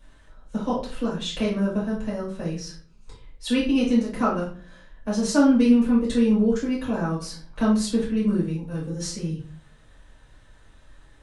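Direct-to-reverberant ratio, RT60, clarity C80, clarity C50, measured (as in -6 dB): -7.0 dB, 0.45 s, 11.0 dB, 6.0 dB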